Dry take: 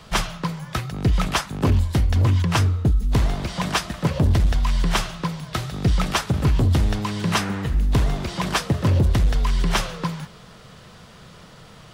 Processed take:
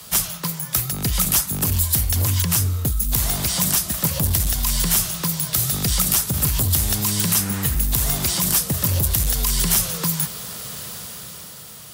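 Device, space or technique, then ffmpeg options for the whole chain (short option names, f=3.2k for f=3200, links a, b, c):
FM broadcast chain: -filter_complex "[0:a]highpass=f=50:w=0.5412,highpass=f=50:w=1.3066,dynaudnorm=f=160:g=13:m=11.5dB,acrossover=split=210|590|5200[a][b][c][d];[a]acompressor=threshold=-17dB:ratio=4[e];[b]acompressor=threshold=-35dB:ratio=4[f];[c]acompressor=threshold=-29dB:ratio=4[g];[d]acompressor=threshold=-33dB:ratio=4[h];[e][f][g][h]amix=inputs=4:normalize=0,aemphasis=mode=production:type=50fm,alimiter=limit=-11.5dB:level=0:latency=1:release=67,asoftclip=type=hard:threshold=-13.5dB,lowpass=f=15k:w=0.5412,lowpass=f=15k:w=1.3066,aemphasis=mode=production:type=50fm,volume=-1.5dB"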